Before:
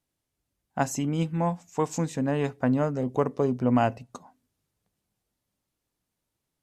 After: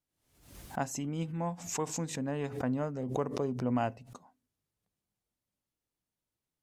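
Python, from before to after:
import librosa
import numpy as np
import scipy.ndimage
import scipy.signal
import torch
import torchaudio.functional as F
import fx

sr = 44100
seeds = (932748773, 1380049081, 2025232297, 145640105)

y = fx.pre_swell(x, sr, db_per_s=84.0)
y = y * 10.0 ** (-8.5 / 20.0)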